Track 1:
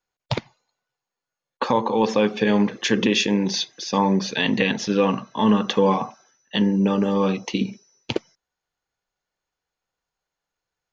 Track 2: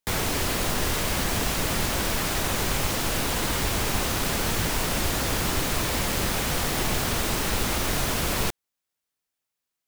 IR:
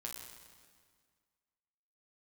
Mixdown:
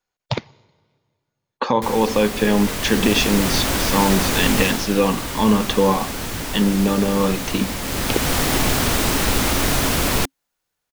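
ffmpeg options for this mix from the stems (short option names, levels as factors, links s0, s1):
-filter_complex "[0:a]volume=1.12,asplit=2[s0][s1];[s1]volume=0.119[s2];[1:a]equalizer=f=270:t=o:w=0.22:g=6.5,dynaudnorm=f=370:g=7:m=3.76,adelay=1750,volume=1.58,afade=t=out:st=4.61:d=0.24:silence=0.446684,afade=t=in:st=7.8:d=0.59:silence=0.398107[s3];[2:a]atrim=start_sample=2205[s4];[s2][s4]afir=irnorm=-1:irlink=0[s5];[s0][s3][s5]amix=inputs=3:normalize=0"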